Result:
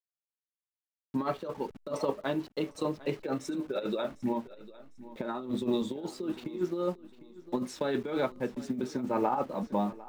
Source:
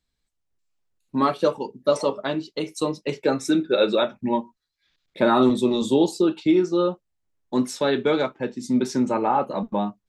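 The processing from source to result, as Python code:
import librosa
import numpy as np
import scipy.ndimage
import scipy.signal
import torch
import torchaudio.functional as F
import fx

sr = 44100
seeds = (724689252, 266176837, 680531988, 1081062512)

y = fx.delta_hold(x, sr, step_db=-40.0)
y = fx.high_shelf(y, sr, hz=4600.0, db=-11.0)
y = fx.over_compress(y, sr, threshold_db=-22.0, ratio=-0.5)
y = fx.echo_feedback(y, sr, ms=752, feedback_pct=30, wet_db=-18)
y = fx.am_noise(y, sr, seeds[0], hz=5.7, depth_pct=55)
y = F.gain(torch.from_numpy(y), -5.0).numpy()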